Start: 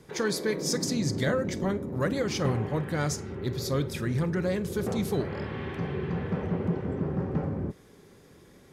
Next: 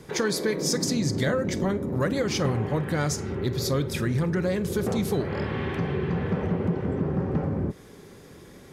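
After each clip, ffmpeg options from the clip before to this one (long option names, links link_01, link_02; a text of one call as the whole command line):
ffmpeg -i in.wav -af "acompressor=threshold=-32dB:ratio=2,volume=7dB" out.wav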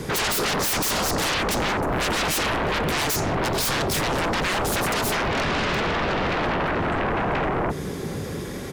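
ffmpeg -i in.wav -filter_complex "[0:a]asplit=2[link_01][link_02];[link_02]adelay=699.7,volume=-22dB,highshelf=frequency=4000:gain=-15.7[link_03];[link_01][link_03]amix=inputs=2:normalize=0,aeval=exprs='0.251*sin(PI/2*10*val(0)/0.251)':channel_layout=same,volume=-8.5dB" out.wav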